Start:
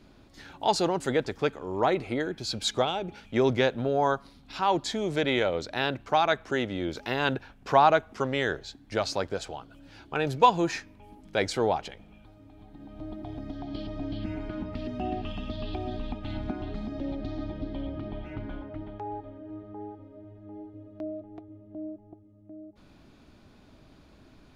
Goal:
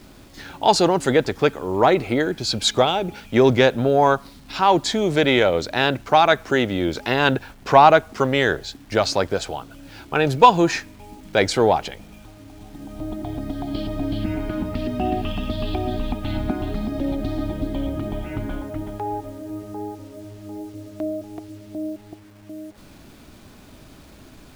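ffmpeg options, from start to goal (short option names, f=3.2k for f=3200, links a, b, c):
-af "acontrast=66,acrusher=bits=8:mix=0:aa=0.000001,volume=2.5dB"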